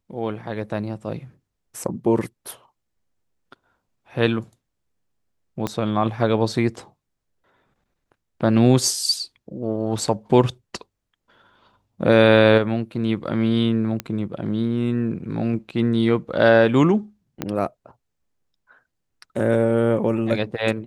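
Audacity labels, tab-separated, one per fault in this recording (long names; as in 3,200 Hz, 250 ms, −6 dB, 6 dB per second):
5.670000	5.670000	click −11 dBFS
14.000000	14.000000	click −11 dBFS
17.420000	17.420000	click −10 dBFS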